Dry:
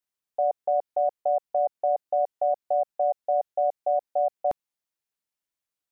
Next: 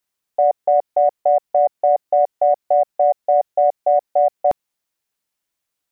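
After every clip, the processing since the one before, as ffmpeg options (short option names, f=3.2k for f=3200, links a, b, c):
-af "acontrast=38,volume=3.5dB"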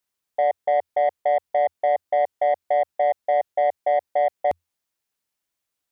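-af "equalizer=f=85:t=o:w=0.21:g=4,asoftclip=type=tanh:threshold=-11dB,volume=-2.5dB"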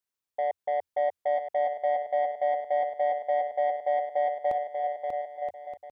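-af "aecho=1:1:590|973.5|1223|1385|1490:0.631|0.398|0.251|0.158|0.1,volume=-8dB"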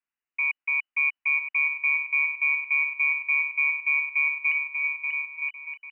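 -af "lowpass=f=2.6k:t=q:w=0.5098,lowpass=f=2.6k:t=q:w=0.6013,lowpass=f=2.6k:t=q:w=0.9,lowpass=f=2.6k:t=q:w=2.563,afreqshift=-3000,equalizer=f=125:t=o:w=1:g=-10,equalizer=f=250:t=o:w=1:g=6,equalizer=f=500:t=o:w=1:g=-11,volume=2.5dB"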